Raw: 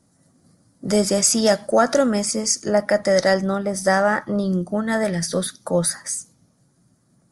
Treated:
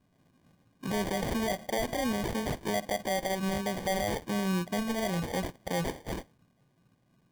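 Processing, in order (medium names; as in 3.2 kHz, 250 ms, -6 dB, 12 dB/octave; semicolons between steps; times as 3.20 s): peak limiter -14.5 dBFS, peak gain reduction 10.5 dB; sample-and-hold 33×; trim -7.5 dB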